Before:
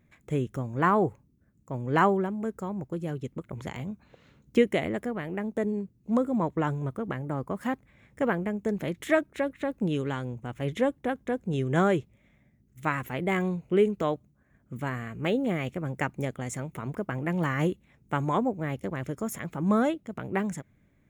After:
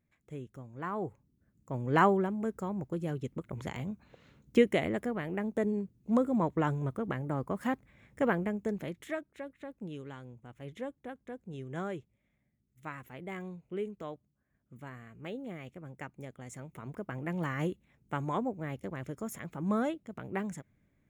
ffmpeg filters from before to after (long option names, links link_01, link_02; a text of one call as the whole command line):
ffmpeg -i in.wav -af "volume=5.5dB,afade=type=in:start_time=0.89:duration=0.89:silence=0.237137,afade=type=out:start_time=8.4:duration=0.77:silence=0.251189,afade=type=in:start_time=16.25:duration=1:silence=0.421697" out.wav